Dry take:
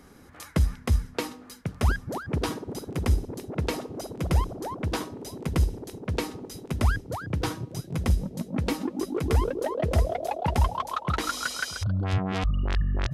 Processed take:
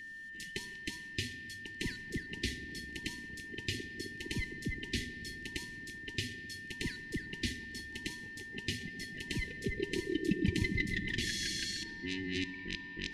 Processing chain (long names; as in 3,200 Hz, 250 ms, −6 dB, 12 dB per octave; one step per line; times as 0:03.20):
frequency inversion band by band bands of 1,000 Hz
high-frequency loss of the air 57 metres
on a send at −10.5 dB: convolution reverb RT60 3.5 s, pre-delay 4 ms
on the sum: steady tone 1,800 Hz −35 dBFS
inverse Chebyshev band-stop filter 540–1,400 Hz, stop band 40 dB